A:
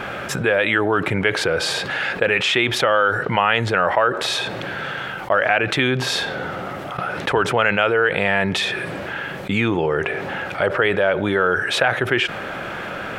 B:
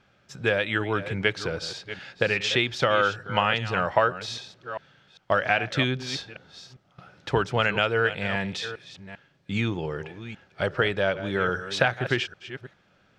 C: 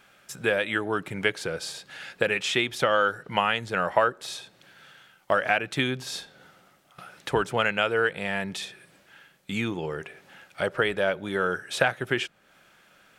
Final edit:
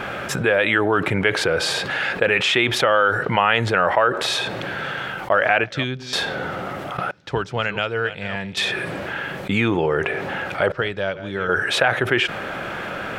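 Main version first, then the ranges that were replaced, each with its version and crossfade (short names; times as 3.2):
A
5.64–6.13 from B
7.11–8.57 from B
10.72–11.49 from B
not used: C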